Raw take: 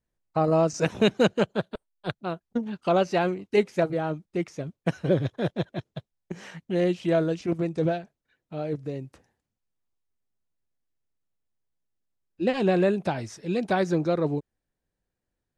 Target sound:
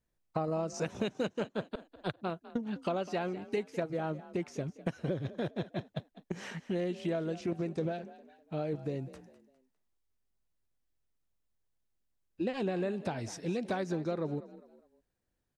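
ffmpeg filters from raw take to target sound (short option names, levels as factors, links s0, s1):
-filter_complex "[0:a]acompressor=threshold=0.0282:ratio=6,asplit=2[s0][s1];[s1]asplit=3[s2][s3][s4];[s2]adelay=202,afreqshift=42,volume=0.15[s5];[s3]adelay=404,afreqshift=84,volume=0.0556[s6];[s4]adelay=606,afreqshift=126,volume=0.0204[s7];[s5][s6][s7]amix=inputs=3:normalize=0[s8];[s0][s8]amix=inputs=2:normalize=0"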